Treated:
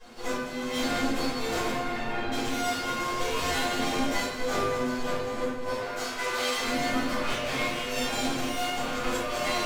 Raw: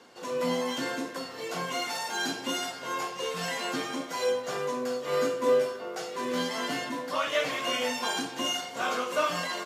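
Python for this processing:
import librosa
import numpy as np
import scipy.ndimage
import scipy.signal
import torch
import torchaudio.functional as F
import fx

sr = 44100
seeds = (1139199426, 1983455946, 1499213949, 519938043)

y = fx.lower_of_two(x, sr, delay_ms=8.4)
y = fx.notch(y, sr, hz=1300.0, q=6.1, at=(3.58, 4.12))
y = fx.highpass(y, sr, hz=710.0, slope=12, at=(5.7, 6.59))
y = fx.over_compress(y, sr, threshold_db=-35.0, ratio=-1.0)
y = fx.air_absorb(y, sr, metres=420.0, at=(1.7, 2.32))
y = fx.echo_split(y, sr, split_hz=1700.0, low_ms=586, high_ms=206, feedback_pct=52, wet_db=-11)
y = fx.room_shoebox(y, sr, seeds[0], volume_m3=220.0, walls='mixed', distance_m=5.2)
y = F.gain(torch.from_numpy(y), -9.0).numpy()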